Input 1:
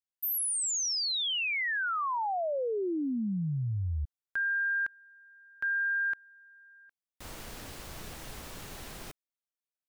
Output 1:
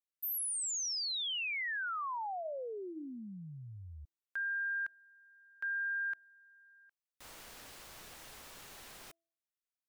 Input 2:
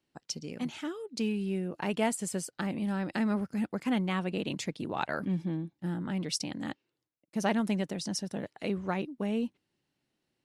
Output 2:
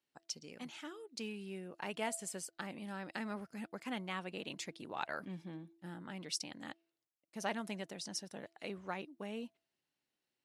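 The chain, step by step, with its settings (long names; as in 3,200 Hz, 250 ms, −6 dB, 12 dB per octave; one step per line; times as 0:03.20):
low-shelf EQ 360 Hz −12 dB
hum removal 333 Hz, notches 2
level −5.5 dB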